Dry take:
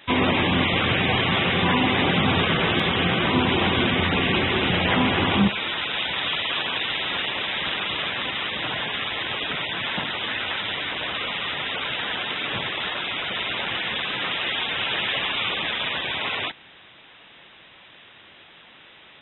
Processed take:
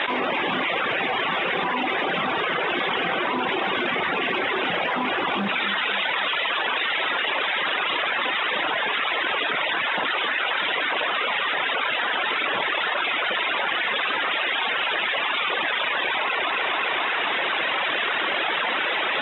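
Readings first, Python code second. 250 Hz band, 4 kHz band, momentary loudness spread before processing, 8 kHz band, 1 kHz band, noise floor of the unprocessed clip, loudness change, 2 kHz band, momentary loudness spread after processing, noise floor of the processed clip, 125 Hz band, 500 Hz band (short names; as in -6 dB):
-7.5 dB, -1.5 dB, 6 LU, n/a, +3.5 dB, -49 dBFS, 0.0 dB, +3.0 dB, 1 LU, -25 dBFS, -16.0 dB, +0.5 dB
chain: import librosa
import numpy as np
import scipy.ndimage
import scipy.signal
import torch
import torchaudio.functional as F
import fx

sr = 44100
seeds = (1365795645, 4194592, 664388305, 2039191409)

p1 = fx.dereverb_blind(x, sr, rt60_s=1.9)
p2 = fx.quant_float(p1, sr, bits=4)
p3 = 10.0 ** (-13.5 / 20.0) * np.tanh(p2 / 10.0 ** (-13.5 / 20.0))
p4 = fx.bandpass_edges(p3, sr, low_hz=420.0, high_hz=2300.0)
p5 = p4 + fx.echo_feedback(p4, sr, ms=267, feedback_pct=54, wet_db=-15, dry=0)
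y = fx.env_flatten(p5, sr, amount_pct=100)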